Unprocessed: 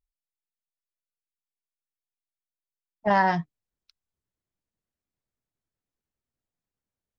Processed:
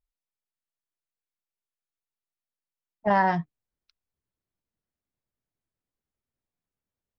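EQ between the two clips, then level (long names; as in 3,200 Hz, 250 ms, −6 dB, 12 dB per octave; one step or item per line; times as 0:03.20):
high-shelf EQ 3,600 Hz −9.5 dB
0.0 dB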